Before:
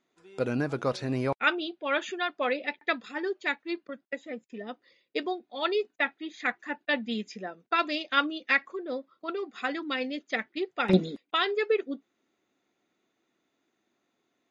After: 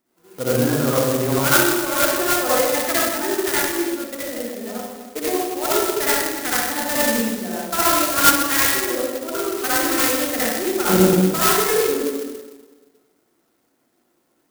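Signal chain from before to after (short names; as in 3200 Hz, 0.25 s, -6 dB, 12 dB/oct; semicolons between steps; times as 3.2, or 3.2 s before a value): 9.47–10.17 high shelf 2600 Hz +11.5 dB; reverb RT60 1.4 s, pre-delay 52 ms, DRR -9.5 dB; clock jitter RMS 0.1 ms; gain +1 dB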